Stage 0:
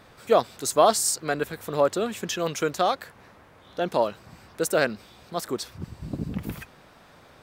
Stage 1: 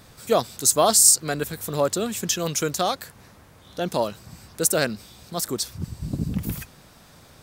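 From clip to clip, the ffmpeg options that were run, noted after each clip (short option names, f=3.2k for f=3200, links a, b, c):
-af "bass=f=250:g=8,treble=f=4k:g=13,volume=-1.5dB"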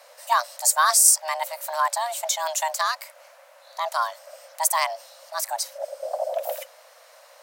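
-af "afreqshift=470,volume=-1dB"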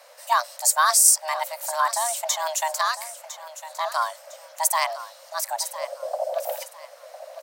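-af "aecho=1:1:1005|2010|3015:0.211|0.0634|0.019"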